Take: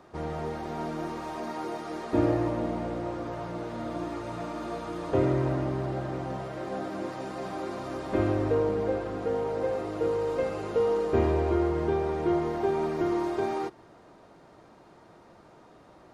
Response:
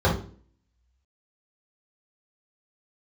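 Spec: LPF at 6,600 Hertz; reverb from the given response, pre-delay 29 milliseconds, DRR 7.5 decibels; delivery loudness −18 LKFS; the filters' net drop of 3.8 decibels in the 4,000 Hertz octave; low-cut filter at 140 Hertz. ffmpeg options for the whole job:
-filter_complex "[0:a]highpass=140,lowpass=6600,equalizer=frequency=4000:width_type=o:gain=-4.5,asplit=2[link_01][link_02];[1:a]atrim=start_sample=2205,adelay=29[link_03];[link_02][link_03]afir=irnorm=-1:irlink=0,volume=-25dB[link_04];[link_01][link_04]amix=inputs=2:normalize=0,volume=9dB"

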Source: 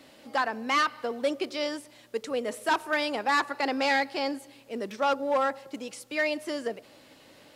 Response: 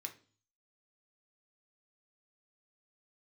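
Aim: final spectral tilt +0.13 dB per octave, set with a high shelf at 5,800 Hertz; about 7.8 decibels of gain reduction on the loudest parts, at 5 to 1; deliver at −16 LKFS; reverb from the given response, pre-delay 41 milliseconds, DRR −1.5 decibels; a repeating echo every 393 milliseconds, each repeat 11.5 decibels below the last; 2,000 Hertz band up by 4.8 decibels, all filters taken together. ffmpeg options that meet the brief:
-filter_complex "[0:a]equalizer=frequency=2000:width_type=o:gain=6.5,highshelf=frequency=5800:gain=-7,acompressor=threshold=-27dB:ratio=5,aecho=1:1:393|786|1179:0.266|0.0718|0.0194,asplit=2[link_01][link_02];[1:a]atrim=start_sample=2205,adelay=41[link_03];[link_02][link_03]afir=irnorm=-1:irlink=0,volume=4.5dB[link_04];[link_01][link_04]amix=inputs=2:normalize=0,volume=12.5dB"

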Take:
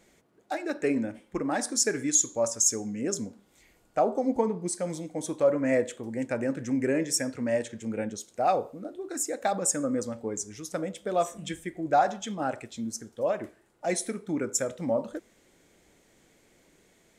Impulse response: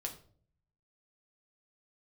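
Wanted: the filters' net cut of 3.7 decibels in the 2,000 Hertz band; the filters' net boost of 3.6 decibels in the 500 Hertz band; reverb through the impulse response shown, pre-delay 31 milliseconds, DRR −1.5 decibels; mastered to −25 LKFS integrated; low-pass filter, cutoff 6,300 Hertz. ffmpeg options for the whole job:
-filter_complex "[0:a]lowpass=6300,equalizer=frequency=500:width_type=o:gain=4.5,equalizer=frequency=2000:width_type=o:gain=-5,asplit=2[link_01][link_02];[1:a]atrim=start_sample=2205,adelay=31[link_03];[link_02][link_03]afir=irnorm=-1:irlink=0,volume=2.5dB[link_04];[link_01][link_04]amix=inputs=2:normalize=0,volume=-1.5dB"

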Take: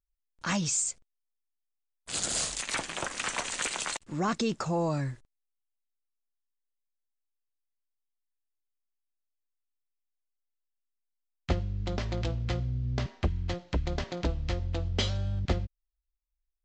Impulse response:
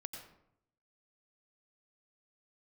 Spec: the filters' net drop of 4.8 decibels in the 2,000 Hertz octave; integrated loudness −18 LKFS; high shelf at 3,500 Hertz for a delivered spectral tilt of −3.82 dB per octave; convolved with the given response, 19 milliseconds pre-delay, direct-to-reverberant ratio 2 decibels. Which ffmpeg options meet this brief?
-filter_complex "[0:a]equalizer=frequency=2000:width_type=o:gain=-7.5,highshelf=frequency=3500:gain=3.5,asplit=2[link_01][link_02];[1:a]atrim=start_sample=2205,adelay=19[link_03];[link_02][link_03]afir=irnorm=-1:irlink=0,volume=1dB[link_04];[link_01][link_04]amix=inputs=2:normalize=0,volume=11dB"

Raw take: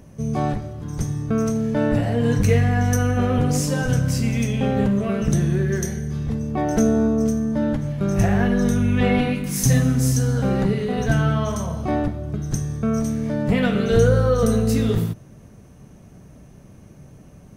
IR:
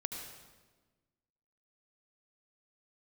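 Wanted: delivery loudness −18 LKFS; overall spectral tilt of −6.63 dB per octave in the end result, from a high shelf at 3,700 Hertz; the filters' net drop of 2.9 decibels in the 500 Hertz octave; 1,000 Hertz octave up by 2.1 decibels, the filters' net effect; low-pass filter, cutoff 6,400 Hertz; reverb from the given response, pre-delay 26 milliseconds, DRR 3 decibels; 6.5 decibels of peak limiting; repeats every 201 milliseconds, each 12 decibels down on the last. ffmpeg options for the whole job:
-filter_complex "[0:a]lowpass=6400,equalizer=frequency=500:width_type=o:gain=-4.5,equalizer=frequency=1000:width_type=o:gain=5.5,highshelf=frequency=3700:gain=-3,alimiter=limit=-12dB:level=0:latency=1,aecho=1:1:201|402|603:0.251|0.0628|0.0157,asplit=2[link_01][link_02];[1:a]atrim=start_sample=2205,adelay=26[link_03];[link_02][link_03]afir=irnorm=-1:irlink=0,volume=-3.5dB[link_04];[link_01][link_04]amix=inputs=2:normalize=0,volume=2.5dB"

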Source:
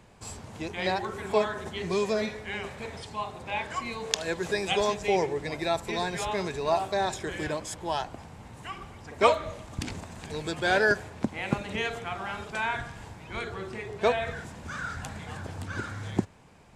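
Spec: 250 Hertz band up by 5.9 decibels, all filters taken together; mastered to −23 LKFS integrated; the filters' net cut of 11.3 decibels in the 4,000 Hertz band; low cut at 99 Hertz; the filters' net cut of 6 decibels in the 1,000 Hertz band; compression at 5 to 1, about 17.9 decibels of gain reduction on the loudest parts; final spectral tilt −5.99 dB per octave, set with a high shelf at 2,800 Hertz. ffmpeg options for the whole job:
ffmpeg -i in.wav -af "highpass=99,equalizer=frequency=250:width_type=o:gain=9,equalizer=frequency=1000:width_type=o:gain=-7.5,highshelf=frequency=2800:gain=-9,equalizer=frequency=4000:width_type=o:gain=-7,acompressor=threshold=-37dB:ratio=5,volume=18dB" out.wav

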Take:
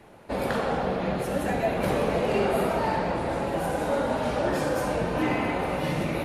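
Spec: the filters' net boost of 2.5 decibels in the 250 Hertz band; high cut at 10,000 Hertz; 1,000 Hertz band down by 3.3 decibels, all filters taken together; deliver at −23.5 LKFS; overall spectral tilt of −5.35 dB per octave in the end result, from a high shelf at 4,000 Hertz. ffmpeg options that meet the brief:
ffmpeg -i in.wav -af "lowpass=10000,equalizer=frequency=250:width_type=o:gain=3.5,equalizer=frequency=1000:width_type=o:gain=-5,highshelf=frequency=4000:gain=3.5,volume=3dB" out.wav

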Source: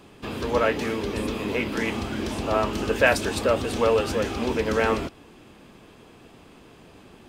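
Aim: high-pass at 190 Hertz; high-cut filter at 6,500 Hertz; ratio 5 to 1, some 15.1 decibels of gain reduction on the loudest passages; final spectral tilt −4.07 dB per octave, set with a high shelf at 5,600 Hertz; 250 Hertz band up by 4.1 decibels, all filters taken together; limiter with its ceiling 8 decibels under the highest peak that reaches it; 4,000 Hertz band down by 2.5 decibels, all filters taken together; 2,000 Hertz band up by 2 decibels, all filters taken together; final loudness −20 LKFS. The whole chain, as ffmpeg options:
ffmpeg -i in.wav -af "highpass=190,lowpass=6500,equalizer=frequency=250:width_type=o:gain=6.5,equalizer=frequency=2000:width_type=o:gain=3.5,equalizer=frequency=4000:width_type=o:gain=-6.5,highshelf=frequency=5600:gain=5,acompressor=threshold=-29dB:ratio=5,volume=15dB,alimiter=limit=-11dB:level=0:latency=1" out.wav

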